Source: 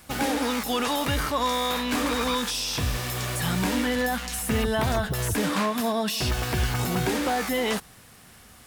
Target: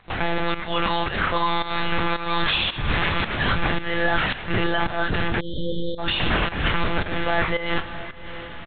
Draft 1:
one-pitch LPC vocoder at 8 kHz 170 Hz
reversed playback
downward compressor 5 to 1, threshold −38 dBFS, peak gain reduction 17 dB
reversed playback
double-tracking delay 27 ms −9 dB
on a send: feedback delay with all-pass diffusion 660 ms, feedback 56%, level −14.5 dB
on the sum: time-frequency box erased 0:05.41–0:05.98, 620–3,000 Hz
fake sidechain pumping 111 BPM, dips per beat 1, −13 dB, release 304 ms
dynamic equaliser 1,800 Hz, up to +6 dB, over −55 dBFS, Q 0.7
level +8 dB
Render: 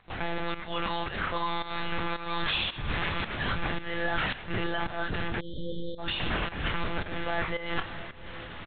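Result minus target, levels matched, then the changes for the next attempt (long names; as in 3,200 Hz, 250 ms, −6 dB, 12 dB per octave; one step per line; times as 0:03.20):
downward compressor: peak gain reduction +8.5 dB
change: downward compressor 5 to 1, threshold −27.5 dBFS, peak gain reduction 9 dB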